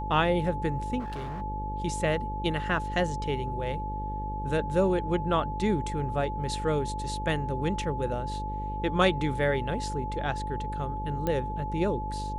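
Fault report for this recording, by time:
mains buzz 50 Hz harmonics 11 −35 dBFS
whistle 860 Hz −34 dBFS
0:00.99–0:01.42: clipping −32 dBFS
0:11.27: click −16 dBFS

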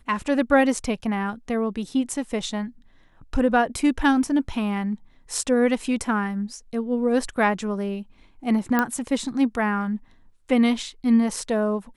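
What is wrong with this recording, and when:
0:08.79: click −8 dBFS

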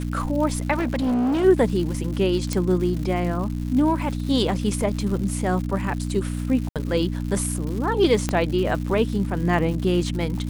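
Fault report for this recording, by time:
surface crackle 220 per second −31 dBFS
mains hum 60 Hz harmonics 5 −27 dBFS
0:00.72–0:01.45: clipping −19 dBFS
0:02.53: click −10 dBFS
0:06.69–0:06.76: drop-out 67 ms
0:08.29: click −9 dBFS

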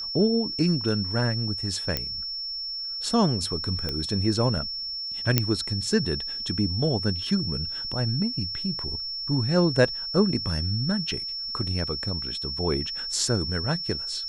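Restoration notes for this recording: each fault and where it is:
whistle 5,400 Hz −30 dBFS
0:01.97: click −10 dBFS
0:03.89: click −15 dBFS
0:05.38: click −4 dBFS

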